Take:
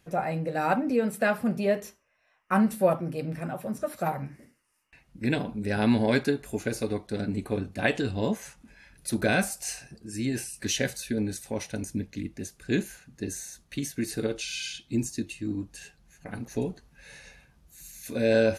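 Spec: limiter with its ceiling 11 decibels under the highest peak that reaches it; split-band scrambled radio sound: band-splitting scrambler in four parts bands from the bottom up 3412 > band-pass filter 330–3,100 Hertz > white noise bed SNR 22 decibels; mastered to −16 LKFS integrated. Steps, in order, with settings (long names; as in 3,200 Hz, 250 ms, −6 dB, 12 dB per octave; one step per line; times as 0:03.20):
brickwall limiter −22 dBFS
band-splitting scrambler in four parts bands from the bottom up 3412
band-pass filter 330–3,100 Hz
white noise bed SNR 22 dB
level +17.5 dB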